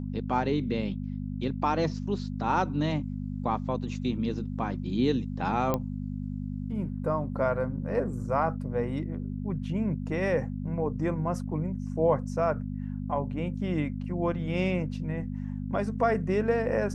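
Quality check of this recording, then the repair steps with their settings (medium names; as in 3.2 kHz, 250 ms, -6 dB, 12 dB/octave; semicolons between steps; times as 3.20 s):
hum 50 Hz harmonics 5 -34 dBFS
5.74 s: pop -14 dBFS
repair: de-click; de-hum 50 Hz, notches 5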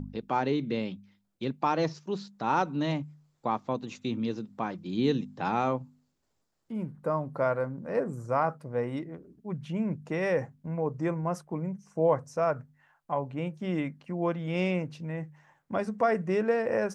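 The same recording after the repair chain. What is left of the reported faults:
nothing left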